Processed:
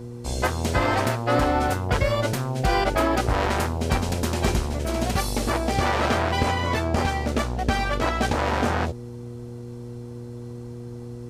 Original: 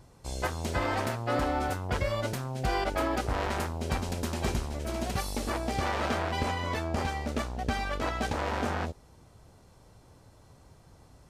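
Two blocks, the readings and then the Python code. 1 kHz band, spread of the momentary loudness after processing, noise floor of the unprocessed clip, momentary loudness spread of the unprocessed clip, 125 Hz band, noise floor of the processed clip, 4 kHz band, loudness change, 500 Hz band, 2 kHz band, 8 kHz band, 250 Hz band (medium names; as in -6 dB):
+7.5 dB, 15 LU, -57 dBFS, 4 LU, +8.5 dB, -37 dBFS, +7.5 dB, +7.5 dB, +7.5 dB, +7.5 dB, +7.5 dB, +8.0 dB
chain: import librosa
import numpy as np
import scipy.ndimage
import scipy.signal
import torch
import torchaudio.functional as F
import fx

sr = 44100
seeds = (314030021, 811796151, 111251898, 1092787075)

y = fx.dmg_buzz(x, sr, base_hz=120.0, harmonics=4, level_db=-44.0, tilt_db=-4, odd_only=False)
y = y * 10.0 ** (7.5 / 20.0)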